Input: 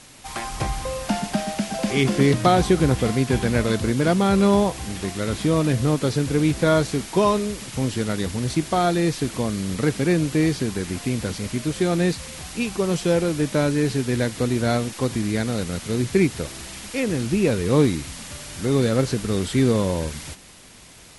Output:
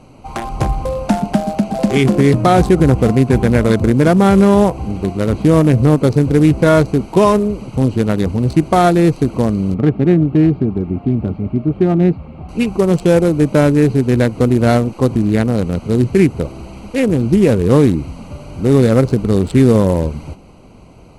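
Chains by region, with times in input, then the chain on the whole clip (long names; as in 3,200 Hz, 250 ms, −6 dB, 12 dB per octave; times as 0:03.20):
0:09.74–0:12.49: high-frequency loss of the air 470 metres + notch comb filter 500 Hz
whole clip: adaptive Wiener filter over 25 samples; dynamic equaliser 3,900 Hz, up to −4 dB, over −43 dBFS, Q 1.3; boost into a limiter +11 dB; level −1 dB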